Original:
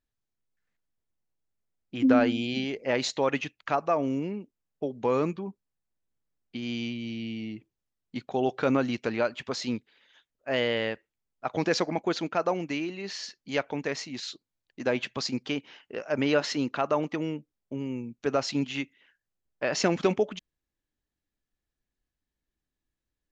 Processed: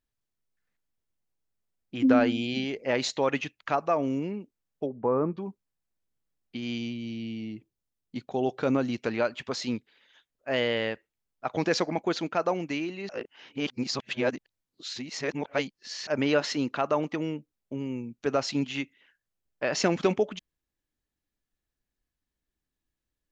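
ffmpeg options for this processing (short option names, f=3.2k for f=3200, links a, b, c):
-filter_complex "[0:a]asplit=3[a][b][c];[a]afade=t=out:st=4.85:d=0.02[d];[b]lowpass=f=1.4k:w=0.5412,lowpass=f=1.4k:w=1.3066,afade=t=in:st=4.85:d=0.02,afade=t=out:st=5.36:d=0.02[e];[c]afade=t=in:st=5.36:d=0.02[f];[d][e][f]amix=inputs=3:normalize=0,asettb=1/sr,asplit=3[g][h][i];[g]atrim=end=6.784[j];[h]atrim=start=6.78:end=9,asetpts=PTS-STARTPTS,afade=t=in:d=0.004:c=qsin,afade=t=out:st=2.216:d=0.004:c=qsin,equalizer=f=1.8k:t=o:w=2.4:g=-4.5[k];[i]atrim=start=8.996[l];[j][k]acrossfade=d=0.004:c1=hsin:c2=qsin[m];[m][l]acrossfade=d=0.004:c1=qsin:c2=hsin,asplit=3[n][o][p];[n]atrim=end=13.092[q];[o]atrim=start=13.088:end=16.072,asetpts=PTS-STARTPTS,areverse[r];[p]atrim=start=16.068[s];[q][r]acrossfade=d=0.004:c1=hsin:c2=hsin[t];[t][s]acrossfade=d=0.004:c1=hsin:c2=hsin"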